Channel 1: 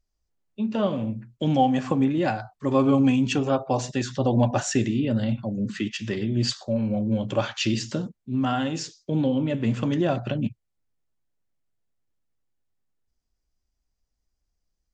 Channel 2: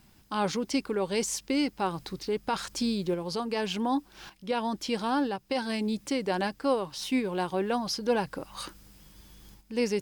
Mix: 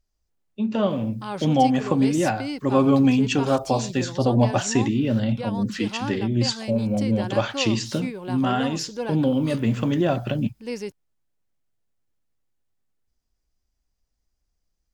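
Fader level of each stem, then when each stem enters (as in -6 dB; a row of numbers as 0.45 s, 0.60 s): +2.0 dB, -3.5 dB; 0.00 s, 0.90 s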